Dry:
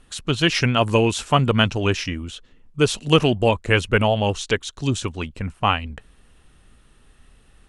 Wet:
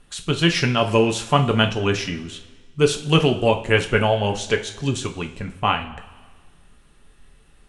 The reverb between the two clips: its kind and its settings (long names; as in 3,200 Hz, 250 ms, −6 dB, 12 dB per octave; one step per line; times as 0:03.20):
coupled-rooms reverb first 0.32 s, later 1.6 s, from −16 dB, DRR 4 dB
level −1.5 dB